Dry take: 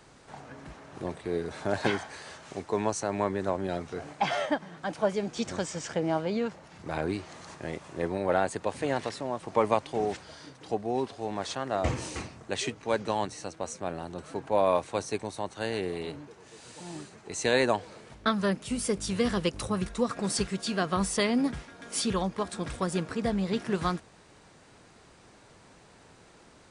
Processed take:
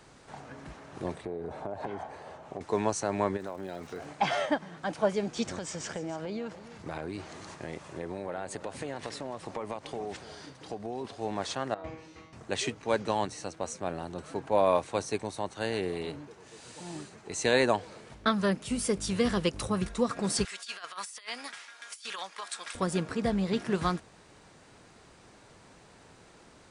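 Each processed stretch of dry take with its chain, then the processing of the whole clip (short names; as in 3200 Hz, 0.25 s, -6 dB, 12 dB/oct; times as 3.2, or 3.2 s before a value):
1.25–2.61 EQ curve 310 Hz 0 dB, 750 Hz +6 dB, 1600 Hz -8 dB, 2700 Hz -9 dB, 4700 Hz -15 dB + compressor 16:1, threshold -31 dBFS
3.36–4.05 low shelf 120 Hz -9 dB + compressor 4:1, threshold -34 dBFS + crackle 240/s -48 dBFS
5.5–11.05 compressor, threshold -32 dBFS + echo 0.288 s -14.5 dB
11.74–12.33 LPF 3900 Hz + resonator 160 Hz, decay 0.54 s, mix 90%
20.45–22.75 HPF 1400 Hz + negative-ratio compressor -39 dBFS, ratio -0.5
whole clip: dry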